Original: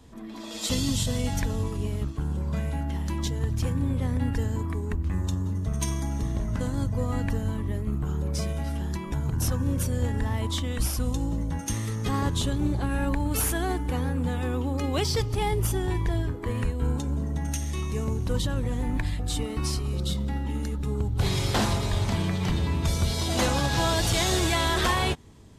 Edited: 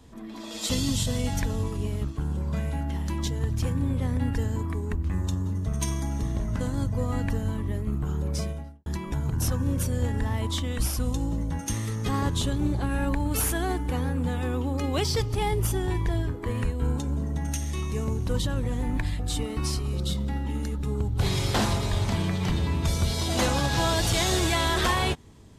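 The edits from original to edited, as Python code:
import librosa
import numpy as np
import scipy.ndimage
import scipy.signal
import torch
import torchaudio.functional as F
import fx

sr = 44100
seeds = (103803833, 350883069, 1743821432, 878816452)

y = fx.studio_fade_out(x, sr, start_s=8.33, length_s=0.53)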